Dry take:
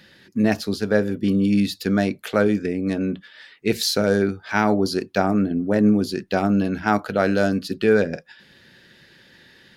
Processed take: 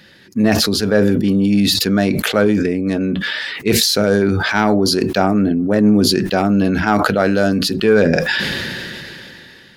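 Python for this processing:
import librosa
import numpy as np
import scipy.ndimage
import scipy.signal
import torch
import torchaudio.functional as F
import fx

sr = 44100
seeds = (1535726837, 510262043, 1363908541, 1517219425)

y = 10.0 ** (-5.0 / 20.0) * np.tanh(x / 10.0 ** (-5.0 / 20.0))
y = fx.sustainer(y, sr, db_per_s=20.0)
y = y * 10.0 ** (4.5 / 20.0)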